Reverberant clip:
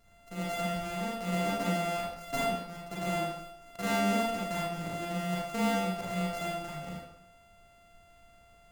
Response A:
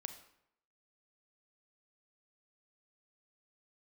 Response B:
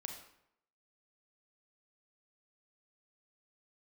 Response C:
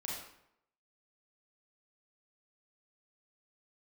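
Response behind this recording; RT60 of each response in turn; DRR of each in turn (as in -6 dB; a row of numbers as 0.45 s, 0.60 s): C; 0.75 s, 0.75 s, 0.75 s; 7.5 dB, 3.0 dB, -4.5 dB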